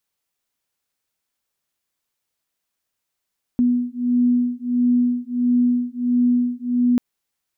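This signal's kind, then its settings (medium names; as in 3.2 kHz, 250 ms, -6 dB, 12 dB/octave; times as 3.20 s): beating tones 244 Hz, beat 1.5 Hz, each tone -19 dBFS 3.39 s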